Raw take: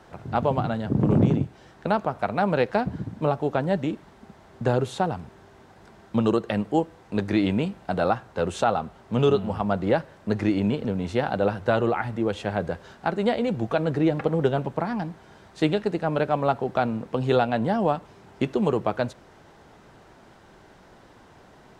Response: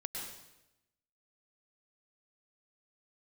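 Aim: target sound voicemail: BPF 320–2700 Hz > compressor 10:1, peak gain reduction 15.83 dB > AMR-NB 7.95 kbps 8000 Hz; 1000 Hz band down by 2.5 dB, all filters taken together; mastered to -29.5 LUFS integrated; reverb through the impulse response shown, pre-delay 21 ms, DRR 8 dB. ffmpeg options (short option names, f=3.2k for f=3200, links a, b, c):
-filter_complex "[0:a]equalizer=f=1k:t=o:g=-3.5,asplit=2[a][b];[1:a]atrim=start_sample=2205,adelay=21[c];[b][c]afir=irnorm=-1:irlink=0,volume=-8.5dB[d];[a][d]amix=inputs=2:normalize=0,highpass=320,lowpass=2.7k,acompressor=threshold=-32dB:ratio=10,volume=9dB" -ar 8000 -c:a libopencore_amrnb -b:a 7950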